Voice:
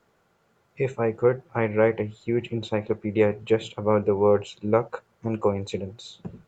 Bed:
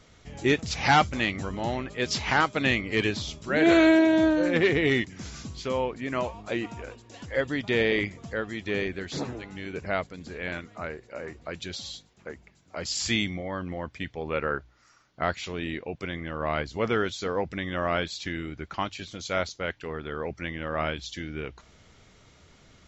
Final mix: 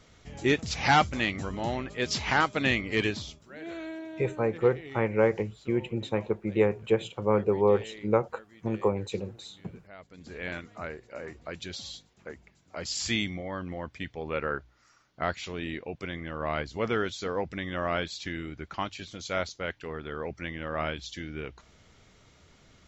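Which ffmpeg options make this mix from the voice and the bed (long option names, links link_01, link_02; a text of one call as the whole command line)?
ffmpeg -i stem1.wav -i stem2.wav -filter_complex "[0:a]adelay=3400,volume=-3dB[link_01];[1:a]volume=16.5dB,afade=type=out:start_time=3.05:duration=0.43:silence=0.112202,afade=type=in:start_time=9.98:duration=0.41:silence=0.125893[link_02];[link_01][link_02]amix=inputs=2:normalize=0" out.wav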